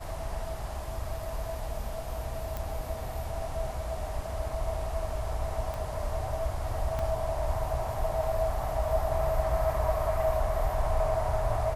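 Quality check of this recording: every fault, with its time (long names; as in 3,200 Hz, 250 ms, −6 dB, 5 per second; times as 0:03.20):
0:02.57: click
0:05.74: click
0:06.99: drop-out 2.9 ms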